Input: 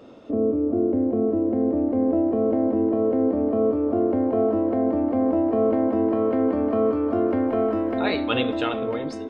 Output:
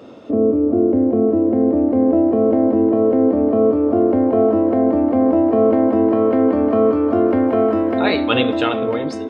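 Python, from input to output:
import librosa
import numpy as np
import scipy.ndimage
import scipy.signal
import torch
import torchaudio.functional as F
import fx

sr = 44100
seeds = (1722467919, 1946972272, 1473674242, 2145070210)

y = scipy.signal.sosfilt(scipy.signal.butter(2, 70.0, 'highpass', fs=sr, output='sos'), x)
y = y * 10.0 ** (6.5 / 20.0)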